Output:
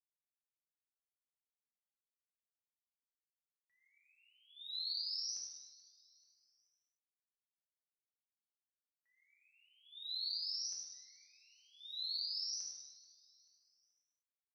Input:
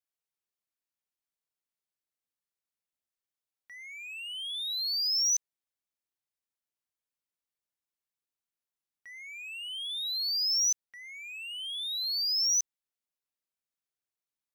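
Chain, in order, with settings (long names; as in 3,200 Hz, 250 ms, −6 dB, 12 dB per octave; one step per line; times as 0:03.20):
noise gate −33 dBFS, range −32 dB
downward compressor, threshold −35 dBFS, peak gain reduction 10.5 dB
head-to-tape spacing loss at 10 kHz 23 dB
repeating echo 434 ms, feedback 40%, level −21 dB
reverb whose tail is shaped and stops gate 380 ms falling, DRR −4 dB
level +1.5 dB
Opus 128 kbit/s 48,000 Hz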